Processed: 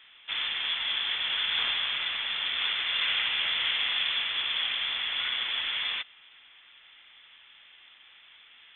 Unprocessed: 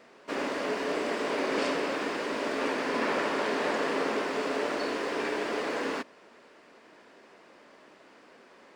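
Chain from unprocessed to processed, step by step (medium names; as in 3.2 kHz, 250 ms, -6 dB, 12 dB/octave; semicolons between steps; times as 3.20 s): frequency inversion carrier 3.8 kHz; peaking EQ 2 kHz +8.5 dB 2.7 oct; trim -6.5 dB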